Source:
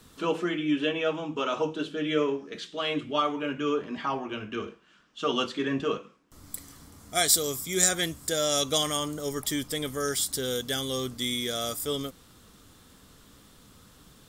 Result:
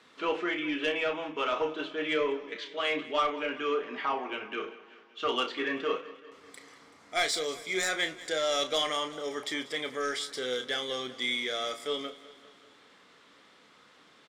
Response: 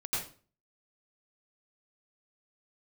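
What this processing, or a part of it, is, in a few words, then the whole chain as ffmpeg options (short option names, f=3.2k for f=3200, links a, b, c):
intercom: -filter_complex "[0:a]highpass=420,lowpass=3.9k,equalizer=f=2.1k:t=o:w=0.4:g=7,asoftclip=type=tanh:threshold=-19.5dB,lowshelf=f=69:g=6.5,asplit=2[a][b];[b]adelay=32,volume=-9dB[c];[a][c]amix=inputs=2:normalize=0,aecho=1:1:192|384|576|768|960:0.126|0.0743|0.0438|0.0259|0.0153"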